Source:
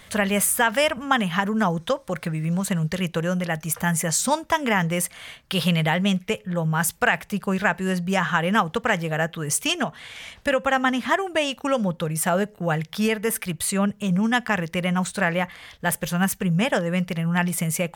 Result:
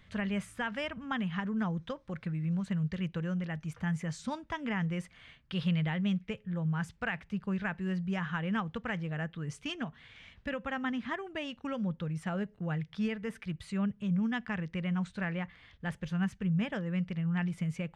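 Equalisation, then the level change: tape spacing loss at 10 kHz 30 dB; peaking EQ 660 Hz -11 dB 2.1 oct; -5.0 dB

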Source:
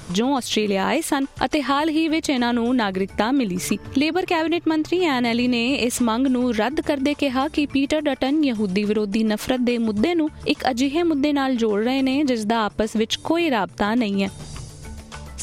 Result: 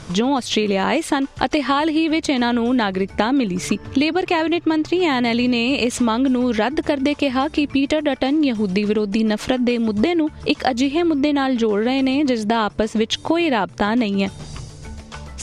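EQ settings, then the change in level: low-pass 7.5 kHz 12 dB/octave; +2.0 dB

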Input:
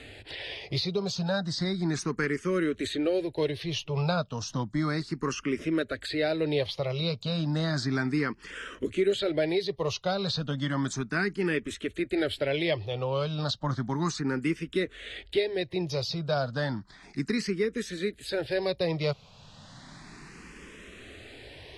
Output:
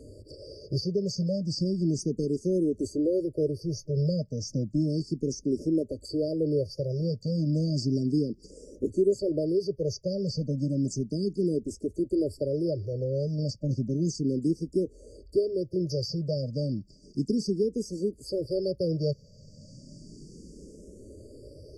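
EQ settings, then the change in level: treble shelf 6.6 kHz -6 dB; dynamic bell 590 Hz, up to -4 dB, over -38 dBFS, Q 2.7; brick-wall FIR band-stop 630–4500 Hz; +2.5 dB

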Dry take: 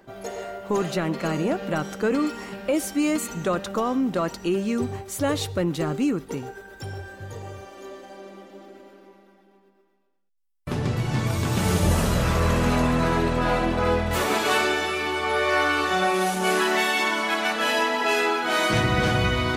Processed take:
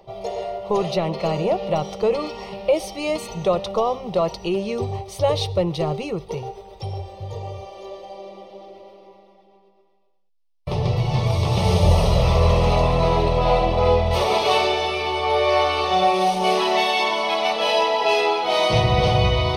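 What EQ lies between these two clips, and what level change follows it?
Savitzky-Golay filter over 15 samples; static phaser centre 650 Hz, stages 4; +7.5 dB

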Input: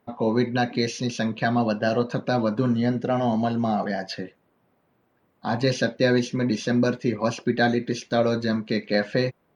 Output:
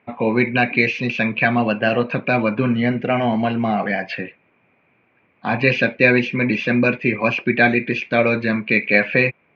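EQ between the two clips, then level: high-pass 62 Hz; resonant low-pass 2.4 kHz, resonance Q 12; +3.5 dB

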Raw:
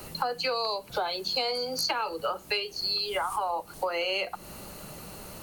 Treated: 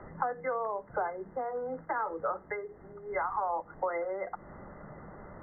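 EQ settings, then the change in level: brick-wall FIR low-pass 2.1 kHz; hum notches 60/120/180/240/300/360/420/480 Hz; -2.0 dB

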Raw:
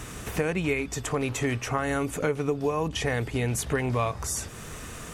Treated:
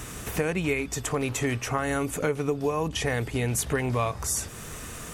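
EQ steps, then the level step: treble shelf 9 kHz +7 dB; 0.0 dB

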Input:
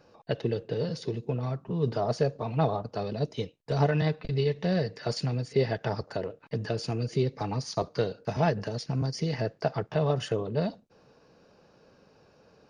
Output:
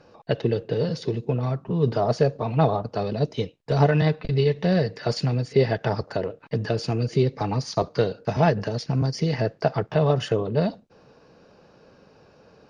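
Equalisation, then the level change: distance through air 51 m; +6.0 dB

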